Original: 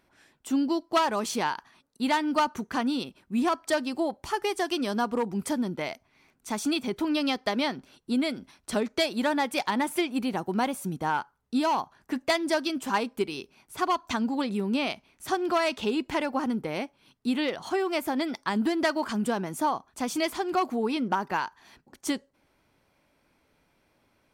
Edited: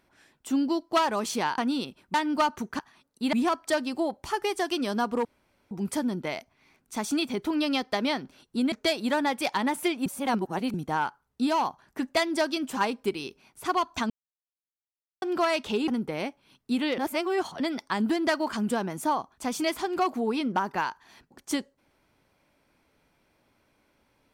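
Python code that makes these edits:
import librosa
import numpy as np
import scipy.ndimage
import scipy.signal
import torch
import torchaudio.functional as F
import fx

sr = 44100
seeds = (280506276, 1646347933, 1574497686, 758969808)

y = fx.edit(x, sr, fx.swap(start_s=1.58, length_s=0.54, other_s=2.77, other_length_s=0.56),
    fx.insert_room_tone(at_s=5.25, length_s=0.46),
    fx.cut(start_s=8.26, length_s=0.59),
    fx.reverse_span(start_s=10.19, length_s=0.68),
    fx.silence(start_s=14.23, length_s=1.12),
    fx.cut(start_s=16.01, length_s=0.43),
    fx.reverse_span(start_s=17.54, length_s=0.62), tone=tone)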